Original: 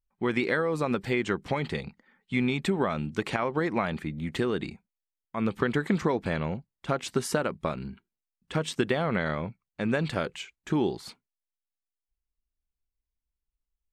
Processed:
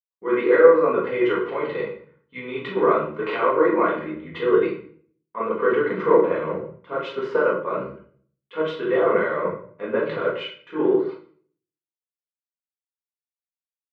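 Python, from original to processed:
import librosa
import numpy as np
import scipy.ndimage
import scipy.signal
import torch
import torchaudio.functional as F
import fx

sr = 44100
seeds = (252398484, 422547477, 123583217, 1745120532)

p1 = x + 0.51 * np.pad(x, (int(2.0 * sr / 1000.0), 0))[:len(x)]
p2 = fx.over_compress(p1, sr, threshold_db=-33.0, ratio=-0.5)
p3 = p1 + (p2 * 10.0 ** (-1.0 / 20.0))
p4 = fx.cabinet(p3, sr, low_hz=320.0, low_slope=12, high_hz=2600.0, hz=(320.0, 460.0, 800.0, 1200.0, 1700.0, 2500.0), db=(6, 6, -3, 9, -3, -4))
p5 = fx.room_shoebox(p4, sr, seeds[0], volume_m3=200.0, walls='mixed', distance_m=1.8)
p6 = fx.band_widen(p5, sr, depth_pct=100)
y = p6 * 10.0 ** (-4.5 / 20.0)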